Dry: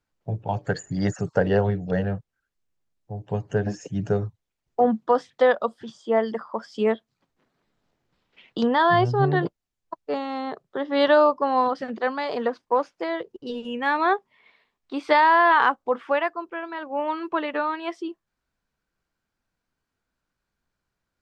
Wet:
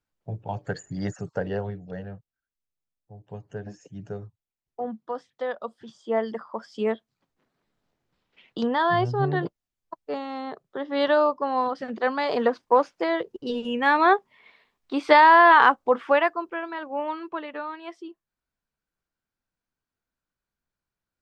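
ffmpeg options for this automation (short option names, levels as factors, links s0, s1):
-af "volume=3.16,afade=t=out:st=0.91:d=1.04:silence=0.446684,afade=t=in:st=5.46:d=0.67:silence=0.375837,afade=t=in:st=11.74:d=0.59:silence=0.473151,afade=t=out:st=16.24:d=1.19:silence=0.281838"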